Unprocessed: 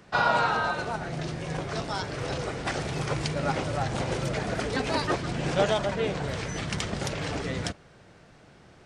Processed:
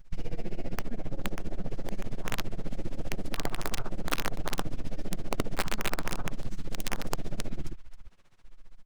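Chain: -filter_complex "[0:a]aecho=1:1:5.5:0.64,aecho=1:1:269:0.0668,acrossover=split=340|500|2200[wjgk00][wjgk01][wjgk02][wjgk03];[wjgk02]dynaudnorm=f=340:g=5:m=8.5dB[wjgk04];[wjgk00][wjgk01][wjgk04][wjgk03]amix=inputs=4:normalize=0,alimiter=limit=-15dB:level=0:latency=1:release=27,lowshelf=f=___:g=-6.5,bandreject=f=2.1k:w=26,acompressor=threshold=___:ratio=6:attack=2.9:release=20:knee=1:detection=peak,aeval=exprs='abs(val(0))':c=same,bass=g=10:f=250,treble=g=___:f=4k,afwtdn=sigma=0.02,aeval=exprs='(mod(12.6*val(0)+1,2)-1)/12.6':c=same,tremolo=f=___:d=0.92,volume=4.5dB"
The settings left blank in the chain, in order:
76, -34dB, 5, 15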